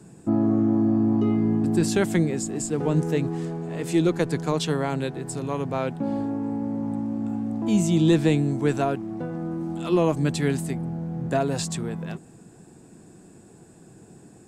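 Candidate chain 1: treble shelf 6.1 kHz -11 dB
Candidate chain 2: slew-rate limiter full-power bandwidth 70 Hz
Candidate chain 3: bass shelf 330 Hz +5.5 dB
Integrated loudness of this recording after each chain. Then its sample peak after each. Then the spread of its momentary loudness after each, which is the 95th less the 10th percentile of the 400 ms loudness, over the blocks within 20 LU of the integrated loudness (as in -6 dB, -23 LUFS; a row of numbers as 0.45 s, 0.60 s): -25.0 LUFS, -25.0 LUFS, -21.5 LUFS; -8.0 dBFS, -8.5 dBFS, -5.0 dBFS; 10 LU, 10 LU, 10 LU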